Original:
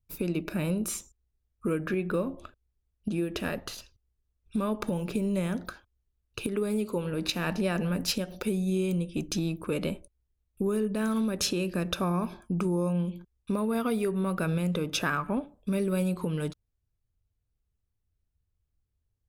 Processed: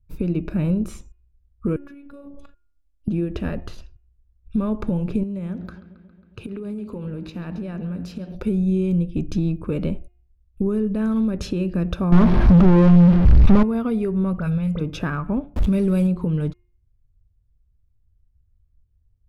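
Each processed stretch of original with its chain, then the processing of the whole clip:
1.76–3.08 s: tone controls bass -5 dB, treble +11 dB + compression 8:1, threshold -41 dBFS + robot voice 282 Hz
5.23–8.35 s: high-pass 66 Hz + compression 4:1, threshold -35 dBFS + bucket-brigade echo 136 ms, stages 4096, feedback 70%, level -16 dB
12.12–13.63 s: one-bit delta coder 32 kbps, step -37.5 dBFS + treble shelf 4.5 kHz -11.5 dB + waveshaping leveller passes 5
14.33–14.81 s: peaking EQ 330 Hz -13 dB 0.93 oct + phase dispersion highs, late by 48 ms, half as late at 2.5 kHz
15.56–16.07 s: jump at every zero crossing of -43.5 dBFS + treble shelf 3.1 kHz +8 dB + level flattener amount 70%
whole clip: RIAA curve playback; de-hum 354.6 Hz, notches 8

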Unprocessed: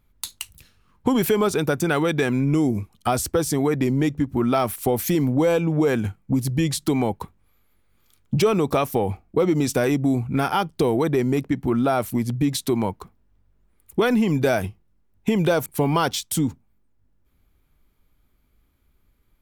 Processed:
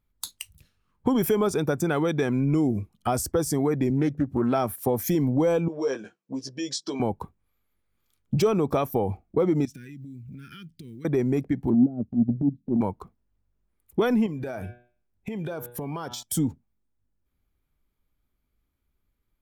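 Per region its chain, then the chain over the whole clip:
3.90–5.05 s: high-pass 63 Hz 24 dB/octave + loudspeaker Doppler distortion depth 0.21 ms
5.68–7.00 s: cabinet simulation 490–7100 Hz, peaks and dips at 780 Hz -10 dB, 1.3 kHz -7 dB, 2.1 kHz -8 dB, 5.5 kHz +6 dB + doubling 15 ms -5 dB
9.65–11.05 s: block-companded coder 7-bit + Chebyshev band-stop 220–2200 Hz + compression 8:1, threshold -36 dBFS
11.70–12.81 s: resonant low-pass 240 Hz, resonance Q 3 + transient shaper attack -12 dB, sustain -8 dB
14.26–16.23 s: de-hum 121.2 Hz, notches 33 + compression 12:1, threshold -26 dBFS
whole clip: spectral noise reduction 9 dB; dynamic bell 2.3 kHz, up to -6 dB, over -38 dBFS, Q 0.83; trim -2.5 dB

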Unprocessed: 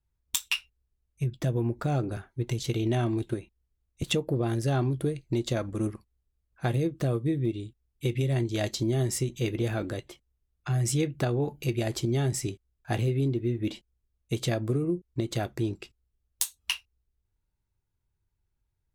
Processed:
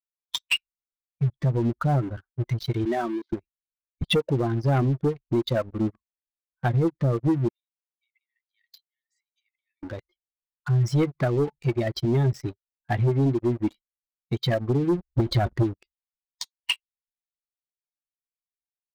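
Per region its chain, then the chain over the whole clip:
2.85–3.33 s: zero-crossing glitches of -30 dBFS + Bessel high-pass 260 Hz, order 4
7.48–9.83 s: compression 8:1, threshold -35 dBFS + brick-wall FIR high-pass 1.7 kHz + band-stop 5.3 kHz, Q 6.2
14.95–15.63 s: bass shelf 140 Hz +4 dB + transient shaper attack +4 dB, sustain +11 dB + loudspeaker Doppler distortion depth 0.12 ms
whole clip: expander on every frequency bin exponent 2; low-pass 4.5 kHz 24 dB/octave; waveshaping leveller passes 3

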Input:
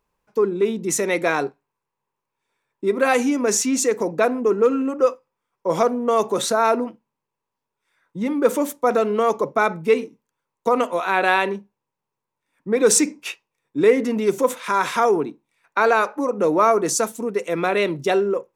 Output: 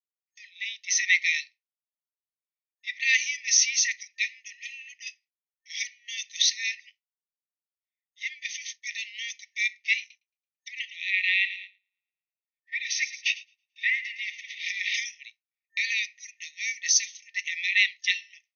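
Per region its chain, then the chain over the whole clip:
9.99–14.94 s: low-pass that closes with the level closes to 2.8 kHz, closed at -17.5 dBFS + feedback echo behind a high-pass 111 ms, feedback 57%, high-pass 2.4 kHz, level -10.5 dB
whole clip: expander -31 dBFS; FFT band-pass 1.8–6.5 kHz; trim +6 dB

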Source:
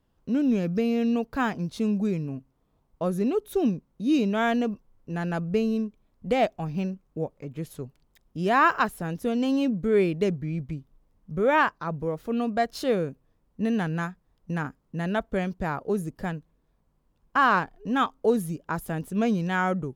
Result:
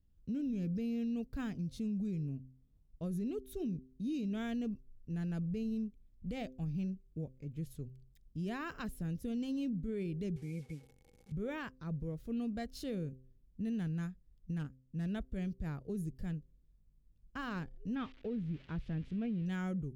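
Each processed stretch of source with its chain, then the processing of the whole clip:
10.36–11.32 s: one-bit delta coder 64 kbps, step -44.5 dBFS + high-pass 320 Hz 6 dB/octave + small resonant body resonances 490/800/2200 Hz, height 18 dB, ringing for 65 ms
14.59–15.09 s: self-modulated delay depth 0.096 ms + upward expansion, over -40 dBFS
17.95–19.46 s: zero-crossing glitches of -21.5 dBFS + low-pass 2.9 kHz 24 dB/octave
whole clip: amplifier tone stack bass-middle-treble 10-0-1; de-hum 129.7 Hz, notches 4; peak limiter -41 dBFS; trim +9.5 dB

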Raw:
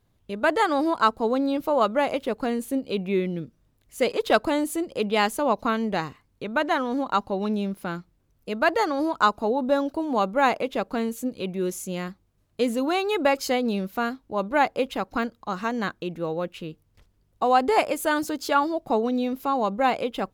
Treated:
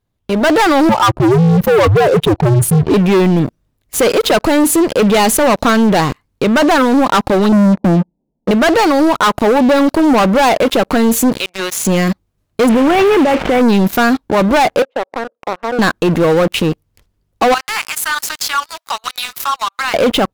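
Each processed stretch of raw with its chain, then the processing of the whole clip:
0.89–2.94 s: spectral contrast enhancement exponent 1.9 + frequency shift -110 Hz
7.52–8.51 s: Chebyshev low-pass 920 Hz, order 6 + resonant low shelf 140 Hz -10.5 dB, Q 3 + loudspeaker Doppler distortion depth 0.17 ms
11.38–11.85 s: high-pass 1.2 kHz + treble shelf 4.3 kHz -11.5 dB
12.69–13.61 s: CVSD coder 16 kbps + compressor with a negative ratio -28 dBFS
14.82–15.79 s: compression 3:1, threshold -32 dBFS + ladder band-pass 590 Hz, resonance 60%
17.54–19.94 s: steep high-pass 1.1 kHz + compression 2.5:1, threshold -46 dBFS + phaser 2 Hz, delay 4.8 ms, feedback 23%
whole clip: level rider gain up to 7 dB; waveshaping leveller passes 5; peak limiter -12 dBFS; trim +5 dB

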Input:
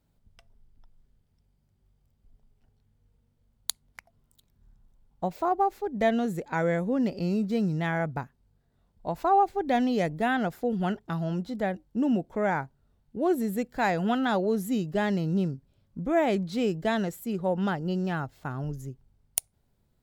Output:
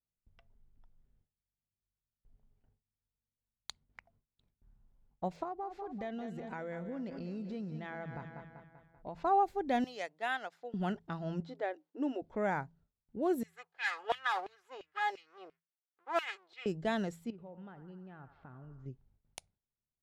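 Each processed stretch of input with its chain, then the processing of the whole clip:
5.43–9.21 s: feedback delay 194 ms, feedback 52%, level -12 dB + compression 3:1, threshold -33 dBFS
9.84–10.74 s: high-pass 680 Hz + treble shelf 3.3 kHz +5.5 dB + upward expansion, over -42 dBFS
11.40–12.22 s: brick-wall FIR high-pass 260 Hz + distance through air 56 m
13.43–16.66 s: comb filter that takes the minimum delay 2.4 ms + LFO high-pass saw down 2.9 Hz 610–2600 Hz + upward expansion, over -45 dBFS
17.30–18.86 s: compression 4:1, threshold -43 dBFS + distance through air 200 m + band-passed feedback delay 83 ms, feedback 74%, band-pass 1.2 kHz, level -10 dB
whole clip: de-hum 83.18 Hz, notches 2; level-controlled noise filter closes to 2.7 kHz, open at -21.5 dBFS; gate with hold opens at -56 dBFS; trim -6.5 dB

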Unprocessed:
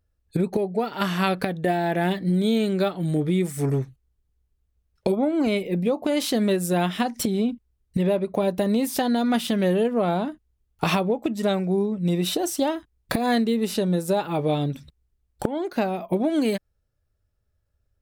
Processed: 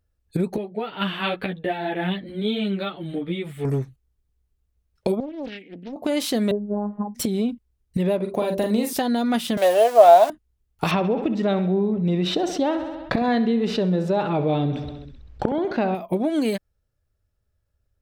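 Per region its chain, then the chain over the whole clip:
0.56–3.65 s: resonant high shelf 4.4 kHz -10.5 dB, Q 3 + three-phase chorus
5.20–5.96 s: vowel filter i + compression 3:1, threshold -27 dBFS + loudspeaker Doppler distortion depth 0.76 ms
6.51–7.15 s: Chebyshev low-pass 950 Hz, order 4 + robot voice 206 Hz
8.16–8.93 s: doubling 43 ms -6 dB + de-hum 65.21 Hz, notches 10
9.57–10.30 s: jump at every zero crossing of -31.5 dBFS + resonant high-pass 660 Hz, resonance Q 7.2 + treble shelf 3.8 kHz +10 dB
10.91–15.95 s: distance through air 200 m + feedback delay 65 ms, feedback 59%, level -14.5 dB + level flattener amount 50%
whole clip: none

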